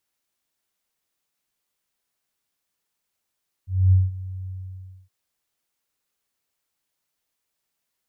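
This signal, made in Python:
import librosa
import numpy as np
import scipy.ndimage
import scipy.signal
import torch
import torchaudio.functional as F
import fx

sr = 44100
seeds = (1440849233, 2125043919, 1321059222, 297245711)

y = fx.adsr_tone(sr, wave='sine', hz=93.5, attack_ms=252.0, decay_ms=186.0, sustain_db=-18.5, held_s=0.81, release_ms=608.0, level_db=-11.0)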